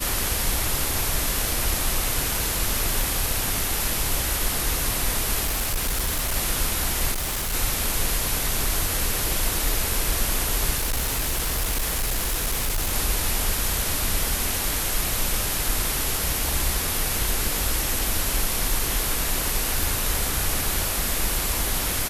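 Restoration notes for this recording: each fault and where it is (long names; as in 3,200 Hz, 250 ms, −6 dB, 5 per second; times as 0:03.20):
0:03.01: click
0:05.45–0:06.37: clipping −20.5 dBFS
0:07.11–0:07.54: clipping −23.5 dBFS
0:10.77–0:12.94: clipping −20.5 dBFS
0:19.83: click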